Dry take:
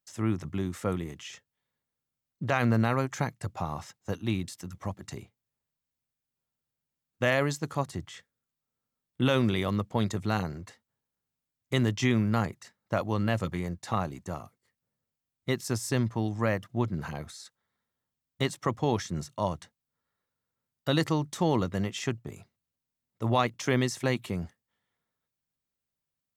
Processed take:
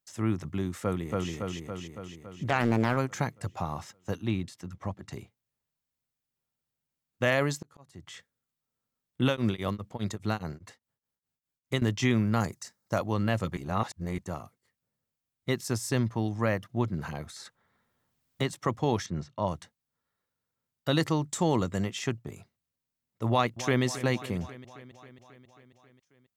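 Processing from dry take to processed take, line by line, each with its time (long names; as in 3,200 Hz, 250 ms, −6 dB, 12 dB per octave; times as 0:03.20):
0:00.83–0:01.31: delay throw 280 ms, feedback 65%, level −1 dB
0:02.49–0:02.97: highs frequency-modulated by the lows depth 0.76 ms
0:04.26–0:05.13: low-pass filter 3,400 Hz 6 dB per octave
0:07.61–0:08.07: volume swells 782 ms
0:09.27–0:11.82: tremolo along a rectified sine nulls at 4.9 Hz
0:12.40–0:12.99: high shelf with overshoot 4,200 Hz +7.5 dB, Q 1.5
0:13.57–0:14.18: reverse
0:15.99–0:16.73: notch filter 7,600 Hz, Q 9.5
0:17.36–0:18.53: multiband upward and downward compressor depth 40%
0:19.06–0:19.48: high-frequency loss of the air 170 metres
0:21.29–0:21.85: parametric band 7,500 Hz +14.5 dB 0.22 octaves
0:23.29–0:23.83: delay throw 270 ms, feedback 70%, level −14.5 dB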